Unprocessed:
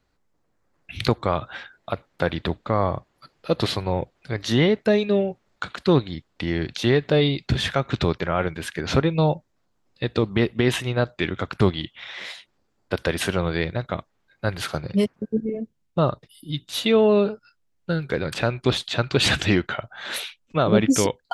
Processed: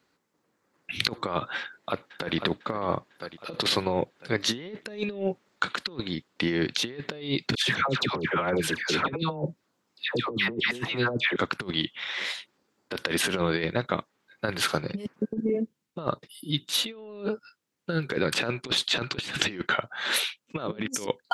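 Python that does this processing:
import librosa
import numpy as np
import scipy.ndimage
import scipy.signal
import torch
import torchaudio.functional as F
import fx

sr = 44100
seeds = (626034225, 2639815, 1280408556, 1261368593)

y = fx.echo_throw(x, sr, start_s=1.6, length_s=0.76, ms=500, feedback_pct=50, wet_db=-12.5)
y = fx.dispersion(y, sr, late='lows', ms=135.0, hz=1200.0, at=(7.55, 11.36))
y = scipy.signal.sosfilt(scipy.signal.butter(2, 200.0, 'highpass', fs=sr, output='sos'), y)
y = fx.peak_eq(y, sr, hz=680.0, db=-5.5, octaves=0.49)
y = fx.over_compress(y, sr, threshold_db=-27.0, ratio=-0.5)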